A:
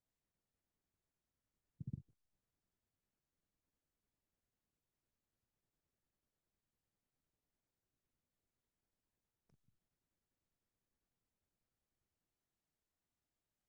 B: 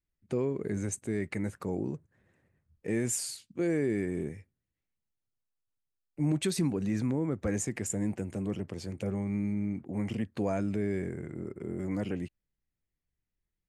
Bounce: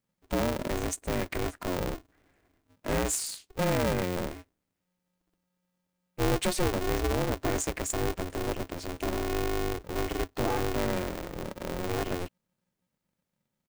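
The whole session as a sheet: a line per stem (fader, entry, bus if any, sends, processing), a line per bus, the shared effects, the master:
+2.5 dB, 0.00 s, no send, echo send -20 dB, dry
+2.0 dB, 0.00 s, no send, no echo send, dry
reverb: off
echo: feedback echo 1.133 s, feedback 38%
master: polarity switched at an audio rate 180 Hz

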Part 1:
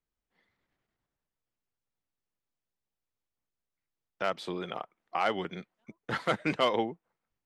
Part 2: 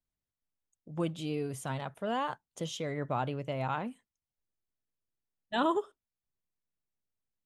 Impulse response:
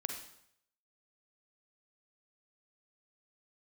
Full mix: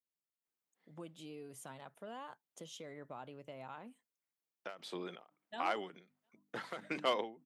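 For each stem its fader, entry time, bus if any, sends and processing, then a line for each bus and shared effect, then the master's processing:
-6.0 dB, 0.45 s, no send, notches 50/100/150/200/250/300 Hz; ending taper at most 140 dB/s
-9.0 dB, 0.00 s, no send, compressor 2.5:1, threshold -37 dBFS, peak gain reduction 9.5 dB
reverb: off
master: HPF 200 Hz 12 dB/oct; high shelf 10000 Hz +6.5 dB

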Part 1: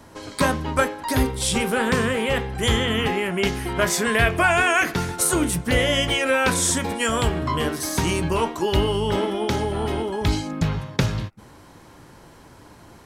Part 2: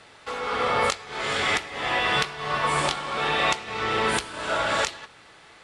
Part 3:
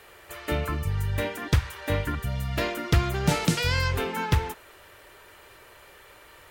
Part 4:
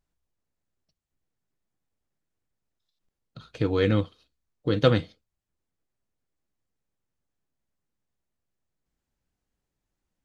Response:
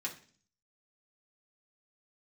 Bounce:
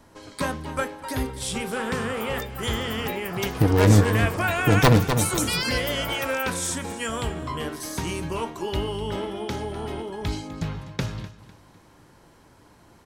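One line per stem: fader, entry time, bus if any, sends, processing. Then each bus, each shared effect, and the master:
-7.0 dB, 0.00 s, no send, echo send -16 dB, dry
0.0 dB, 1.50 s, no send, no echo send, compressor 2.5:1, threshold -38 dBFS, peak gain reduction 13 dB; elliptic band-stop 1500–4800 Hz
-1.5 dB, 1.90 s, no send, echo send -15 dB, per-bin expansion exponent 3; tilt +4 dB/oct
+1.0 dB, 0.00 s, no send, echo send -7.5 dB, self-modulated delay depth 0.89 ms; low shelf 230 Hz +11 dB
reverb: off
echo: feedback echo 0.251 s, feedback 34%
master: dry

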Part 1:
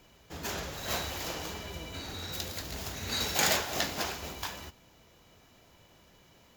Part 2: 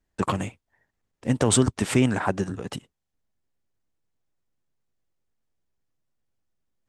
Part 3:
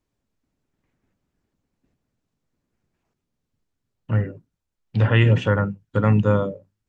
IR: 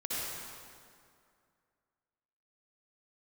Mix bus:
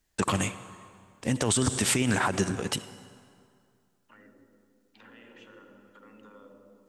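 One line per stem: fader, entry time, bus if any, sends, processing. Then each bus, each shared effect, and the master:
off
0.0 dB, 0.00 s, no bus, send -20.5 dB, high shelf 2100 Hz +11.5 dB
-15.0 dB, 0.00 s, bus A, send -18 dB, resonant low shelf 180 Hz -13 dB, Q 3; limiter -16 dBFS, peak gain reduction 9 dB
bus A: 0.0 dB, HPF 810 Hz 24 dB/oct; compressor, threshold -53 dBFS, peak gain reduction 10.5 dB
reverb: on, RT60 2.3 s, pre-delay 53 ms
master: limiter -14.5 dBFS, peak gain reduction 18 dB

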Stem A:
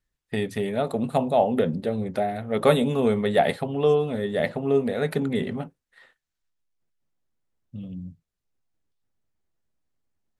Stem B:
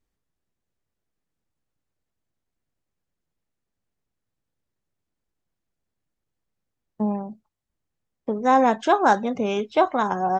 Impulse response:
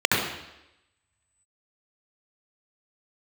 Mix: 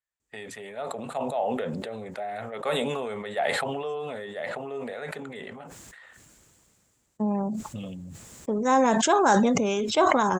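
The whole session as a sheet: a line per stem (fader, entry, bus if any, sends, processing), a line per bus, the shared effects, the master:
-6.5 dB, 0.00 s, no send, three-band isolator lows -17 dB, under 520 Hz, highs -13 dB, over 3300 Hz
-3.0 dB, 0.20 s, no send, notch 750 Hz, Q 13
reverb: off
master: HPF 45 Hz; bell 7400 Hz +14.5 dB 0.55 oct; sustainer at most 20 dB/s

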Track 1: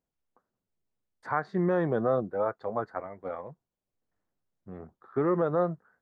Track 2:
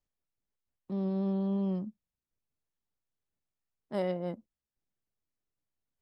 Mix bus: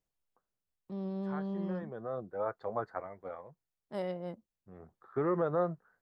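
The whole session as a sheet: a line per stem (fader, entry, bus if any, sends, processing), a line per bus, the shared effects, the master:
-3.5 dB, 0.00 s, no send, auto duck -12 dB, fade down 0.80 s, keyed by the second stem
-4.0 dB, 0.00 s, no send, dry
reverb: off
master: bell 250 Hz -4 dB 0.77 oct

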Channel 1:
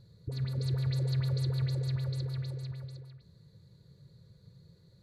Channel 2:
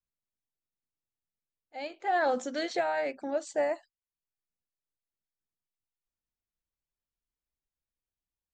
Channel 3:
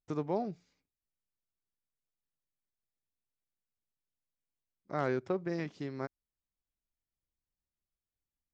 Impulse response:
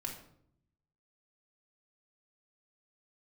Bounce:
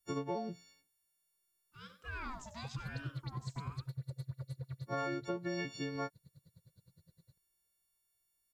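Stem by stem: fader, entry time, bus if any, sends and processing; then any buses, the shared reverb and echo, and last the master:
-1.0 dB, 2.35 s, bus A, no send, no echo send, notch comb 420 Hz; dB-linear tremolo 9.7 Hz, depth 35 dB
-12.5 dB, 0.00 s, bus A, no send, echo send -12 dB, high shelf 4000 Hz +8 dB; ring modulator with a swept carrier 620 Hz, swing 45%, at 1 Hz
+1.5 dB, 0.00 s, no bus, no send, no echo send, frequency quantiser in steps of 4 st
bus A: 0.0 dB, compressor, threshold -37 dBFS, peak gain reduction 7.5 dB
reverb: off
echo: echo 93 ms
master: compressor 6:1, threshold -34 dBFS, peak gain reduction 8.5 dB

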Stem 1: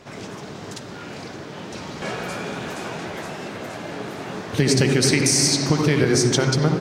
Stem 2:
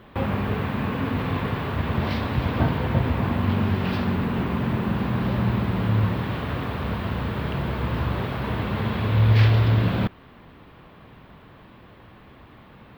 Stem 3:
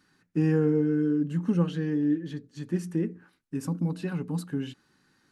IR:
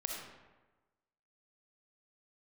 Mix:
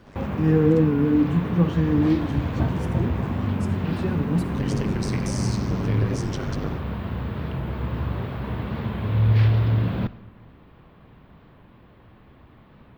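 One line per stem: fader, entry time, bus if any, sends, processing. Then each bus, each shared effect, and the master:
-10.5 dB, 0.00 s, no send, AM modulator 100 Hz, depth 90%
-7.0 dB, 0.00 s, send -14 dB, high shelf 9400 Hz +4.5 dB; notches 50/100 Hz
-1.0 dB, 0.00 s, send -3.5 dB, auto swell 0.146 s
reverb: on, RT60 1.2 s, pre-delay 20 ms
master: tilt -1.5 dB/oct; record warp 45 rpm, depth 100 cents

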